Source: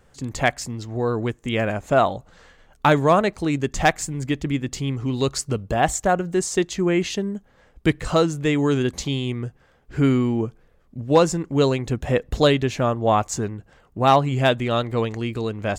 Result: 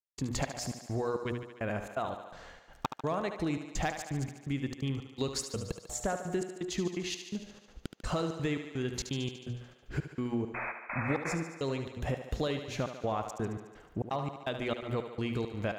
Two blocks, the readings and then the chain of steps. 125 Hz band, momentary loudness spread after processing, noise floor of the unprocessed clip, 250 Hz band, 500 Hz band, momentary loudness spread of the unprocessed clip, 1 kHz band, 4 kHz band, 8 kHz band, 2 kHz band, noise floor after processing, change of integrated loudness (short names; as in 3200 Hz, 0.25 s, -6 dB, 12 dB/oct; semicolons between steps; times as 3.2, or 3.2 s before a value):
-12.5 dB, 8 LU, -57 dBFS, -13.0 dB, -14.5 dB, 11 LU, -15.5 dB, -12.0 dB, -11.0 dB, -12.5 dB, -58 dBFS, -14.0 dB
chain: bell 8200 Hz -5 dB 0.3 oct; de-hum 120.9 Hz, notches 11; in parallel at -1 dB: limiter -12 dBFS, peak gain reduction 6.5 dB; on the sum: compressor 10:1, threshold -22 dBFS, peak gain reduction 14.5 dB; painted sound noise, 10.54–11.35, 510–2600 Hz -30 dBFS; wavefolder -11 dBFS; step gate "..xxx.xx" 168 bpm -60 dB; on a send: thinning echo 73 ms, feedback 70%, high-pass 190 Hz, level -9 dB; on the sum: gain -7 dB